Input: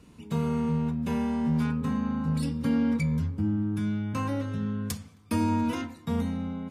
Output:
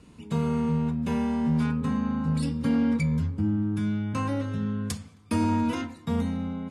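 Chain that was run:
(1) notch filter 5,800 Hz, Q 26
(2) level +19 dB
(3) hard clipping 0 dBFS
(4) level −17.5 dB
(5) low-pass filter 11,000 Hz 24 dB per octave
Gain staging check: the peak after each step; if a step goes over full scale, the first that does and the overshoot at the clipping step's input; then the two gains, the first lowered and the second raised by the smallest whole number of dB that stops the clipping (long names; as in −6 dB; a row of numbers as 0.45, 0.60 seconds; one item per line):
−15.5, +3.5, 0.0, −17.5, −17.0 dBFS
step 2, 3.5 dB
step 2 +15 dB, step 4 −13.5 dB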